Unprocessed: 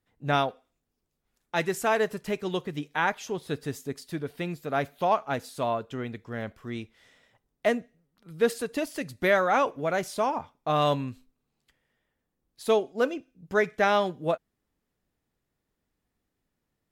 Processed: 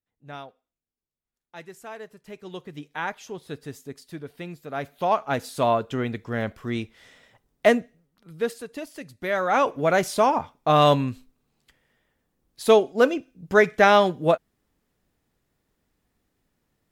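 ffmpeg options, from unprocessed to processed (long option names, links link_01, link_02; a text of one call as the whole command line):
ffmpeg -i in.wav -af "volume=19.5dB,afade=type=in:start_time=2.18:duration=0.69:silence=0.298538,afade=type=in:start_time=4.75:duration=0.95:silence=0.281838,afade=type=out:start_time=7.7:duration=0.85:silence=0.237137,afade=type=in:start_time=9.27:duration=0.62:silence=0.237137" out.wav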